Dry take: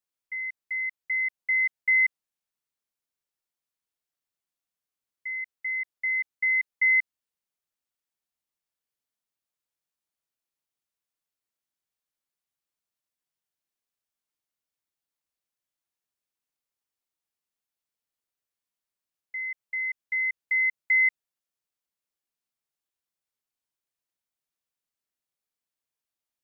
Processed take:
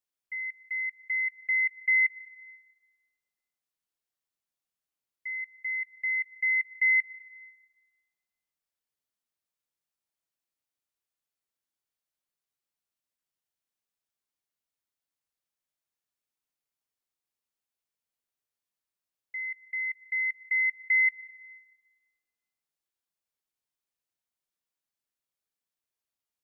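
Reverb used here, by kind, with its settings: digital reverb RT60 1.5 s, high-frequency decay 0.6×, pre-delay 0.105 s, DRR 15 dB; gain -2 dB

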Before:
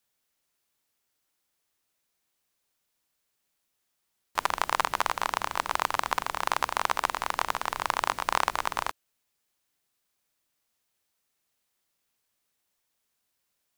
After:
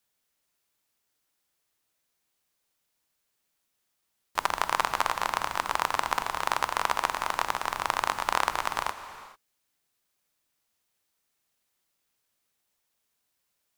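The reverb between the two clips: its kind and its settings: non-linear reverb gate 0.47 s flat, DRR 10 dB

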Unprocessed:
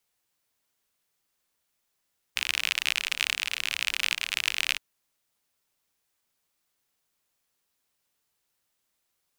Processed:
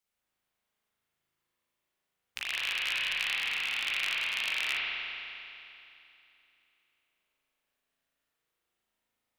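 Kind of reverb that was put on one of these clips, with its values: spring tank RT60 2.9 s, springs 37 ms, chirp 65 ms, DRR -8 dB; gain -10 dB

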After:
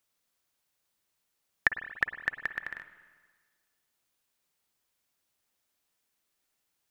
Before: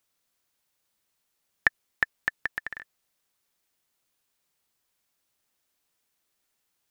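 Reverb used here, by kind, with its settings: spring tank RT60 1.5 s, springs 49/57 ms, chirp 65 ms, DRR 10 dB; gain -2.5 dB

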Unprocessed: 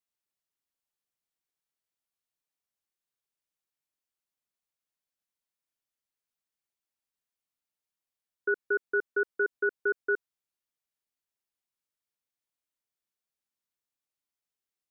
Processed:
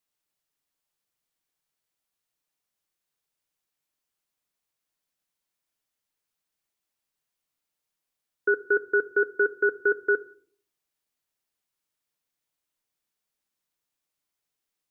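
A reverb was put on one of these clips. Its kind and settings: shoebox room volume 590 m³, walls furnished, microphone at 0.48 m; gain +6 dB

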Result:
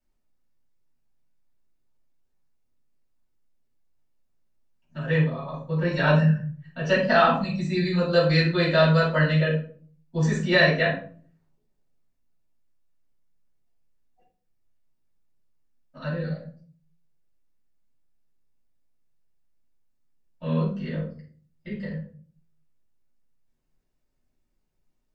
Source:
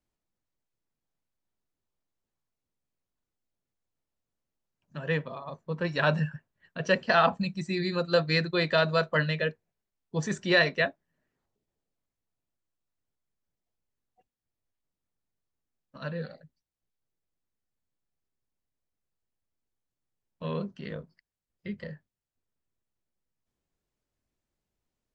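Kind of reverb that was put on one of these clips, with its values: shoebox room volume 370 m³, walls furnished, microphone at 7.3 m; gain -7.5 dB

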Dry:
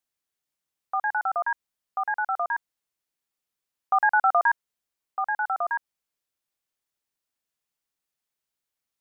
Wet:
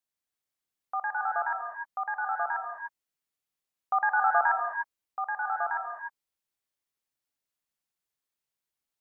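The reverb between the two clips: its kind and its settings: non-linear reverb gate 0.33 s rising, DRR 2 dB; gain -5 dB

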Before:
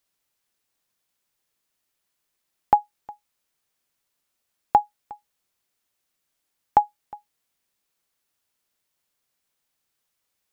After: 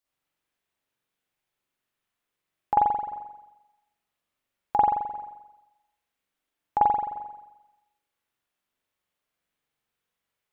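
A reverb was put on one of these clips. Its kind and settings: spring tank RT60 1 s, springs 43 ms, chirp 55 ms, DRR -8 dB; gain -10 dB

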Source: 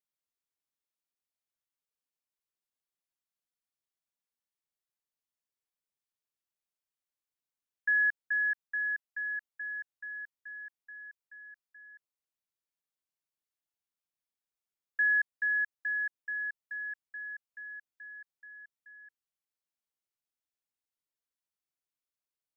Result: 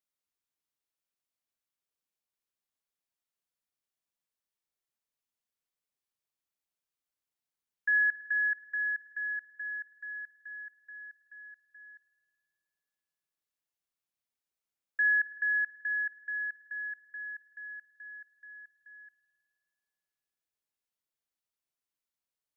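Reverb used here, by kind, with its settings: spring tank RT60 2.3 s, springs 51 ms, chirp 65 ms, DRR 10.5 dB

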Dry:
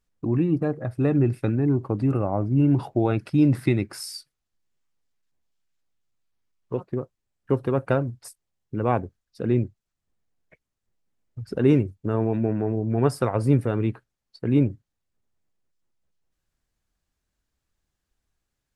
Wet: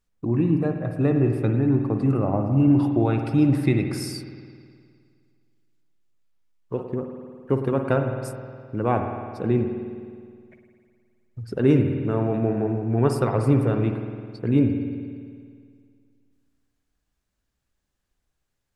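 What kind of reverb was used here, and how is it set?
spring tank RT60 2.1 s, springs 52 ms, chirp 65 ms, DRR 4.5 dB

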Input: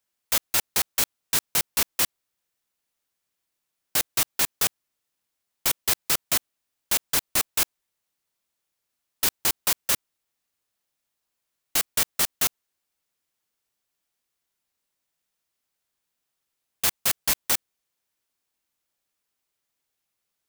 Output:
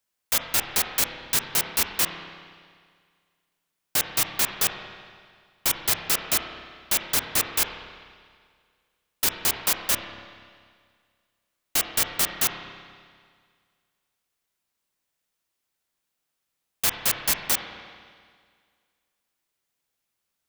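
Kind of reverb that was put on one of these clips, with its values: spring tank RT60 1.9 s, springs 30/48 ms, chirp 60 ms, DRR 4.5 dB

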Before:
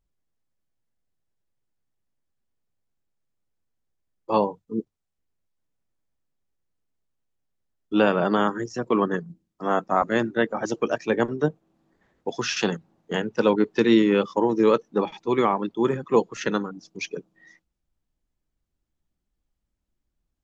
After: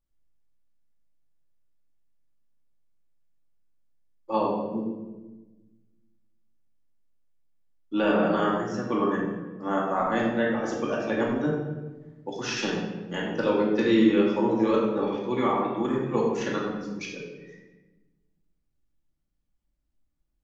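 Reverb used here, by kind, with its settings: shoebox room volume 730 m³, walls mixed, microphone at 2.4 m; gain -8 dB

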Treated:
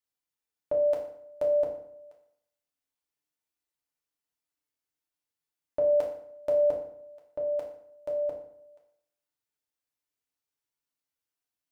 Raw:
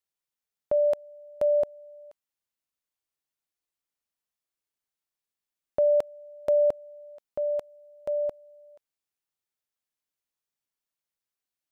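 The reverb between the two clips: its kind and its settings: FDN reverb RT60 0.69 s, low-frequency decay 1.1×, high-frequency decay 0.75×, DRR -1.5 dB; gain -4.5 dB

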